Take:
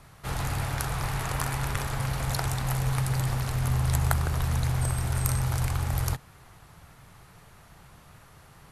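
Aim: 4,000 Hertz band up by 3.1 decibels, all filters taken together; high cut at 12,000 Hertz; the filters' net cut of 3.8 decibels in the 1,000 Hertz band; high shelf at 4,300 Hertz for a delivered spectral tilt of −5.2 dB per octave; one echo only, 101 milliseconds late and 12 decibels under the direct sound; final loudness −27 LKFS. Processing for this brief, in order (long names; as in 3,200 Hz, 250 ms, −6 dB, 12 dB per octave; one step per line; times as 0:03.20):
low-pass filter 12,000 Hz
parametric band 1,000 Hz −5 dB
parametric band 4,000 Hz +8.5 dB
high-shelf EQ 4,300 Hz −8 dB
single-tap delay 101 ms −12 dB
level +1.5 dB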